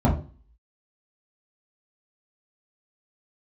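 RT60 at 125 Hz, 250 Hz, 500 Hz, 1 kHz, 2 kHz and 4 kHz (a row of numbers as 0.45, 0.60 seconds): 0.40, 0.45, 0.40, 0.35, 0.35, 0.40 seconds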